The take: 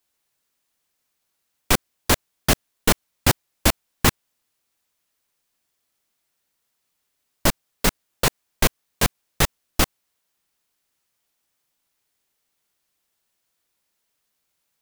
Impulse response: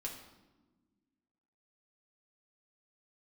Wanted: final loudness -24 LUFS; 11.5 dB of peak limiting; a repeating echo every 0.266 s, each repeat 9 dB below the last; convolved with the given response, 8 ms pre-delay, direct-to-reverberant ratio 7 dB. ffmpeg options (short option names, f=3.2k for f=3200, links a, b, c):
-filter_complex "[0:a]alimiter=limit=-13dB:level=0:latency=1,aecho=1:1:266|532|798|1064:0.355|0.124|0.0435|0.0152,asplit=2[a][b];[1:a]atrim=start_sample=2205,adelay=8[c];[b][c]afir=irnorm=-1:irlink=0,volume=-6dB[d];[a][d]amix=inputs=2:normalize=0,volume=5.5dB"